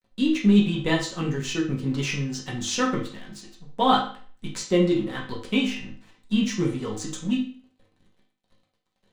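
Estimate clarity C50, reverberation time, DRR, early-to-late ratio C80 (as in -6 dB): 7.0 dB, 0.45 s, -4.0 dB, 11.5 dB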